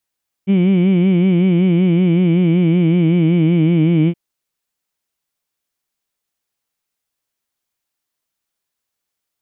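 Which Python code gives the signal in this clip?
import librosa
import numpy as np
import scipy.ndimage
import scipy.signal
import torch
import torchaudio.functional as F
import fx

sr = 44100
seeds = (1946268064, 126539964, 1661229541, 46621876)

y = fx.vowel(sr, seeds[0], length_s=3.67, word='heed', hz=187.0, glide_st=-2.5, vibrato_hz=5.3, vibrato_st=1.05)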